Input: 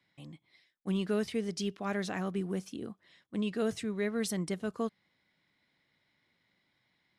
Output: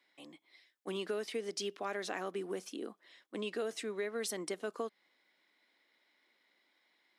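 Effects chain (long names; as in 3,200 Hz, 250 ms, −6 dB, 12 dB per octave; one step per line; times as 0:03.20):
high-pass filter 300 Hz 24 dB per octave
downward compressor 5 to 1, threshold −36 dBFS, peak gain reduction 7 dB
level +2 dB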